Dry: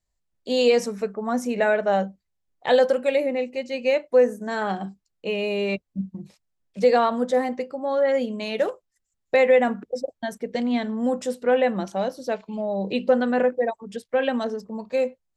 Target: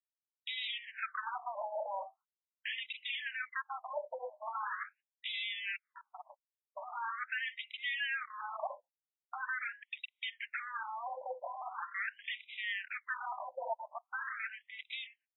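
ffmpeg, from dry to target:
-filter_complex "[0:a]agate=range=-37dB:threshold=-46dB:ratio=16:detection=peak,acompressor=threshold=-32dB:ratio=16,asplit=2[a][b];[b]highpass=f=720:p=1,volume=13dB,asoftclip=type=tanh:threshold=-20dB[c];[a][c]amix=inputs=2:normalize=0,lowpass=f=6.6k:p=1,volume=-6dB,aeval=exprs='0.0188*(abs(mod(val(0)/0.0188+3,4)-2)-1)':c=same,afftfilt=real='re*between(b*sr/1024,700*pow(2800/700,0.5+0.5*sin(2*PI*0.42*pts/sr))/1.41,700*pow(2800/700,0.5+0.5*sin(2*PI*0.42*pts/sr))*1.41)':imag='im*between(b*sr/1024,700*pow(2800/700,0.5+0.5*sin(2*PI*0.42*pts/sr))/1.41,700*pow(2800/700,0.5+0.5*sin(2*PI*0.42*pts/sr))*1.41)':win_size=1024:overlap=0.75,volume=7.5dB"

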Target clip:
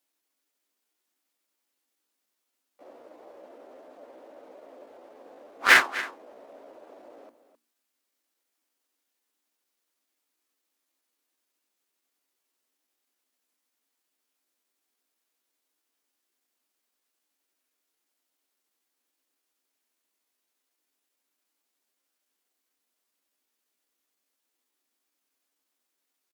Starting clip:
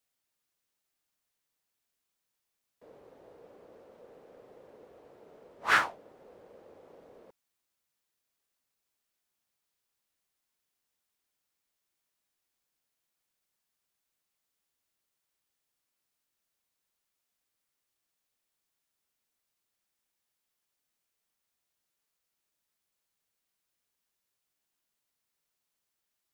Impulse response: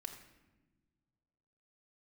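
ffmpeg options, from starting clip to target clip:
-filter_complex "[0:a]lowshelf=f=170:t=q:w=3:g=-10,bandreject=f=50:t=h:w=6,bandreject=f=100:t=h:w=6,bandreject=f=150:t=h:w=6,bandreject=f=200:t=h:w=6,bandreject=f=250:t=h:w=6,bandreject=f=300:t=h:w=6,bandreject=f=350:t=h:w=6,asplit=2[a][b];[b]aecho=0:1:256:0.237[c];[a][c]amix=inputs=2:normalize=0,asetrate=52444,aresample=44100,atempo=0.840896,highpass=61,asplit=2[d][e];[e]acrusher=bits=3:mix=0:aa=0.5,volume=-5.5dB[f];[d][f]amix=inputs=2:normalize=0,volume=4dB"

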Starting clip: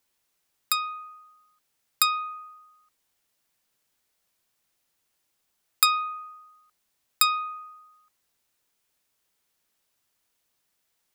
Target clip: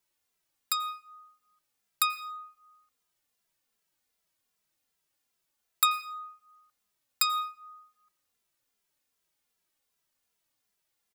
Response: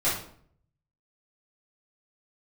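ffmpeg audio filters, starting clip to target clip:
-filter_complex "[0:a]asplit=2[a][b];[1:a]atrim=start_sample=2205,asetrate=41454,aresample=44100,adelay=84[c];[b][c]afir=irnorm=-1:irlink=0,volume=-27.5dB[d];[a][d]amix=inputs=2:normalize=0,asplit=2[e][f];[f]adelay=2.6,afreqshift=-2.6[g];[e][g]amix=inputs=2:normalize=1,volume=-2dB"

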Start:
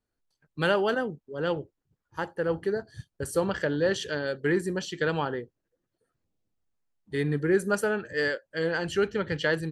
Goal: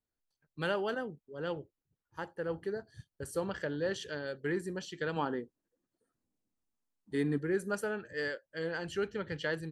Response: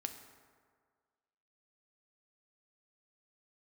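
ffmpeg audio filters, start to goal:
-filter_complex "[0:a]asettb=1/sr,asplit=3[a][b][c];[a]atrim=end=5.164[d];[b]atrim=start=5.16:end=7.38,asetpts=PTS-STARTPTS,afade=t=in:d=0.004:c=qsin,afade=t=out:st=2.216:d=0.004:c=qsin,equalizer=f=125:t=o:w=1:g=-3,equalizer=f=250:t=o:w=1:g=10,equalizer=f=1k:t=o:w=1:g=5,equalizer=f=8k:t=o:w=1:g=7[e];[c]atrim=start=7.376[f];[d][e]acrossfade=d=0.004:c1=hsin:c2=qsin[g];[g][f]acrossfade=d=0.004:c1=qsin:c2=hsin,volume=-8.5dB"

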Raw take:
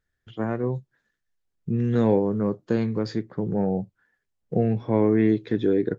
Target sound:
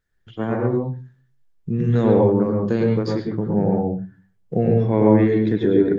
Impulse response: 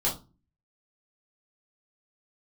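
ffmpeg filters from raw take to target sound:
-filter_complex "[0:a]asplit=2[a][b];[1:a]atrim=start_sample=2205,lowpass=3.2k,adelay=97[c];[b][c]afir=irnorm=-1:irlink=0,volume=-9dB[d];[a][d]amix=inputs=2:normalize=0,volume=2dB"

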